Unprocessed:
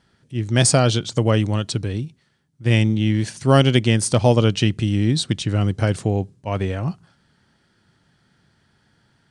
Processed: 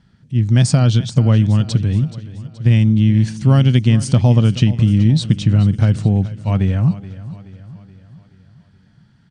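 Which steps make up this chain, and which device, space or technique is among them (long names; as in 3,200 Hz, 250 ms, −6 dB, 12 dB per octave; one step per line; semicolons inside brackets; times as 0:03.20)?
jukebox (low-pass filter 7,300 Hz 12 dB per octave; low shelf with overshoot 270 Hz +9 dB, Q 1.5; downward compressor 4 to 1, threshold −9 dBFS, peak gain reduction 6.5 dB)
repeating echo 426 ms, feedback 51%, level −16 dB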